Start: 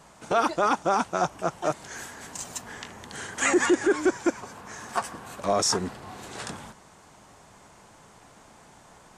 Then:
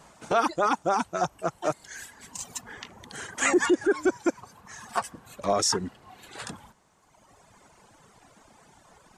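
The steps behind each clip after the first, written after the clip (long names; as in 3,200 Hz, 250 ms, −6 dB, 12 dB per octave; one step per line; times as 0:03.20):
reverb reduction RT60 2 s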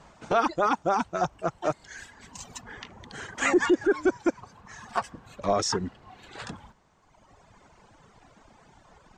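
moving average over 4 samples
low-shelf EQ 72 Hz +9.5 dB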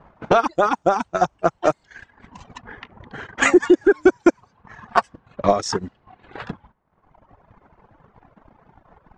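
low-pass that shuts in the quiet parts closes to 1,500 Hz, open at −23.5 dBFS
transient designer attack +9 dB, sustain −10 dB
level +2.5 dB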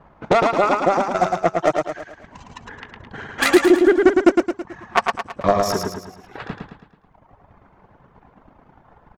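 phase distortion by the signal itself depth 0.15 ms
on a send: repeating echo 109 ms, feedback 46%, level −4 dB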